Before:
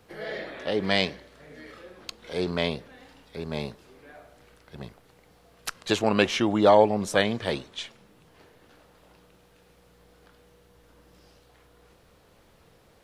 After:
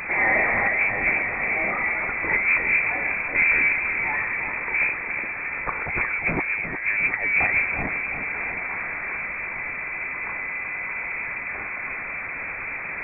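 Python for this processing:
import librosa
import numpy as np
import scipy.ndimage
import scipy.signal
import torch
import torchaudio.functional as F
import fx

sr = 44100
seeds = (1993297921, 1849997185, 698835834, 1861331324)

y = fx.octave_divider(x, sr, octaves=1, level_db=2.0)
y = scipy.signal.sosfilt(scipy.signal.butter(2, 110.0, 'highpass', fs=sr, output='sos'), y)
y = fx.over_compress(y, sr, threshold_db=-31.0, ratio=-0.5)
y = fx.power_curve(y, sr, exponent=0.5)
y = fx.echo_feedback(y, sr, ms=357, feedback_pct=59, wet_db=-8.5)
y = fx.freq_invert(y, sr, carrier_hz=2500)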